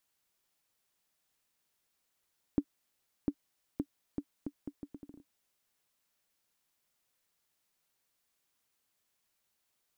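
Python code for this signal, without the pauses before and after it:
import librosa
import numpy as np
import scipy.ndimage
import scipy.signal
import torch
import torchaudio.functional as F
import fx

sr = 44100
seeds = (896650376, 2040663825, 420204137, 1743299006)

y = fx.bouncing_ball(sr, first_gap_s=0.7, ratio=0.74, hz=287.0, decay_ms=63.0, level_db=-16.5)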